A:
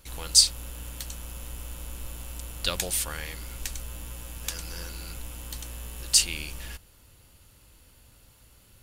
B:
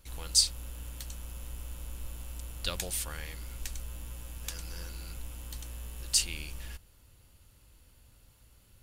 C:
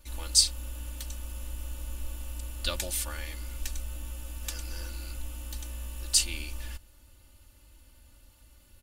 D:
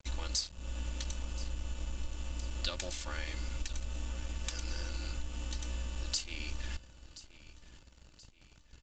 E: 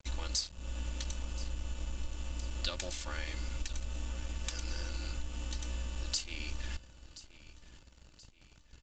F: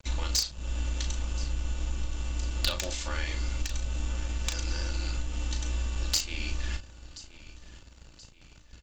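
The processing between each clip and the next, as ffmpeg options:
-af "lowshelf=f=120:g=5.5,volume=0.473"
-af "aecho=1:1:3.4:0.89"
-af "acompressor=threshold=0.0126:ratio=5,aresample=16000,aeval=exprs='sgn(val(0))*max(abs(val(0))-0.00211,0)':c=same,aresample=44100,aecho=1:1:1027|2054|3081|4108:0.141|0.0607|0.0261|0.0112,volume=2.11"
-af anull
-filter_complex "[0:a]asplit=2[s0][s1];[s1]acrusher=bits=3:mix=0:aa=0.000001,volume=0.501[s2];[s0][s2]amix=inputs=2:normalize=0,asplit=2[s3][s4];[s4]adelay=36,volume=0.447[s5];[s3][s5]amix=inputs=2:normalize=0,volume=1.88"

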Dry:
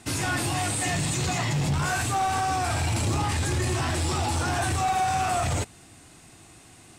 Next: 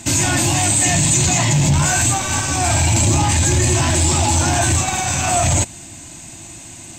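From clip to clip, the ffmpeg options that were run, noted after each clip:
-filter_complex "[0:a]superequalizer=7b=0.316:10b=0.447:11b=0.708:15b=2.51:16b=0.398,asplit=2[s0][s1];[s1]alimiter=limit=0.0631:level=0:latency=1,volume=1[s2];[s0][s2]amix=inputs=2:normalize=0,bandreject=f=760:w=12,volume=2.11"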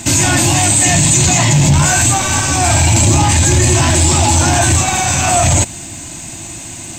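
-filter_complex "[0:a]asplit=2[s0][s1];[s1]alimiter=limit=0.15:level=0:latency=1,volume=0.944[s2];[s0][s2]amix=inputs=2:normalize=0,acrusher=bits=8:mix=0:aa=0.000001,volume=1.26"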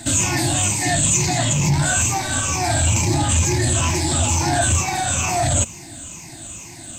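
-af "afftfilt=real='re*pow(10,11/40*sin(2*PI*(0.79*log(max(b,1)*sr/1024/100)/log(2)-(-2.2)*(pts-256)/sr)))':imag='im*pow(10,11/40*sin(2*PI*(0.79*log(max(b,1)*sr/1024/100)/log(2)-(-2.2)*(pts-256)/sr)))':win_size=1024:overlap=0.75,volume=0.355"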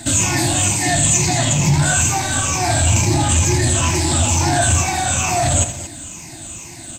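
-af "aecho=1:1:81|229:0.266|0.2,volume=1.26"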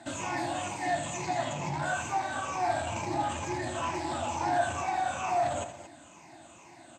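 -af "bandpass=f=820:t=q:w=0.98:csg=0,volume=0.447"

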